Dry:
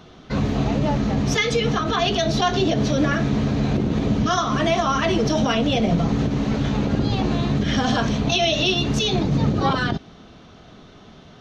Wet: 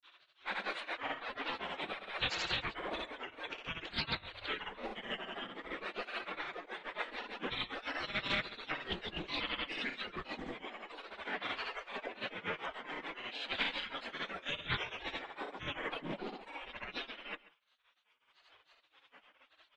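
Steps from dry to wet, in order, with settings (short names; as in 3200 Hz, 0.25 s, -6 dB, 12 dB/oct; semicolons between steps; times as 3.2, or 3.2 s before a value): reverb removal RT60 1.9 s; spectral gate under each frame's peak -25 dB weak; high shelf 7200 Hz +5.5 dB; notches 50/100/150 Hz; grains, grains 12/s, pitch spread up and down by 3 st; vibrato 3.6 Hz 19 cents; grains, spray 28 ms, pitch spread up and down by 0 st; speed mistake 78 rpm record played at 45 rpm; echo 0.137 s -19 dB; Doppler distortion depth 0.25 ms; gain +5.5 dB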